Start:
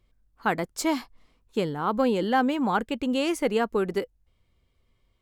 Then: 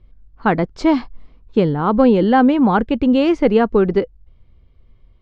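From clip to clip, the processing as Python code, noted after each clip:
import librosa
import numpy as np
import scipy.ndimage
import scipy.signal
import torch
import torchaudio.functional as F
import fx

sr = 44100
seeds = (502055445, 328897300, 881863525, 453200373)

y = scipy.signal.sosfilt(scipy.signal.butter(4, 5200.0, 'lowpass', fs=sr, output='sos'), x)
y = fx.tilt_eq(y, sr, slope=-2.5)
y = y * librosa.db_to_amplitude(7.5)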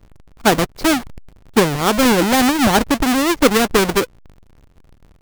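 y = fx.halfwave_hold(x, sr)
y = fx.hpss(y, sr, part='percussive', gain_db=6)
y = y * librosa.db_to_amplitude(-6.5)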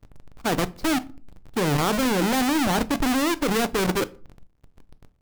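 y = fx.level_steps(x, sr, step_db=23)
y = fx.room_shoebox(y, sr, seeds[0], volume_m3=310.0, walls='furnished', distance_m=0.35)
y = y * librosa.db_to_amplitude(1.0)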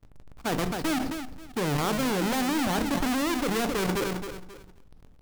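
y = fx.echo_feedback(x, sr, ms=267, feedback_pct=20, wet_db=-11.5)
y = fx.sustainer(y, sr, db_per_s=34.0)
y = y * librosa.db_to_amplitude(-5.0)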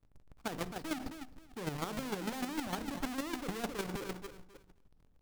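y = fx.chopper(x, sr, hz=6.6, depth_pct=60, duty_pct=15)
y = y * librosa.db_to_amplitude(-6.5)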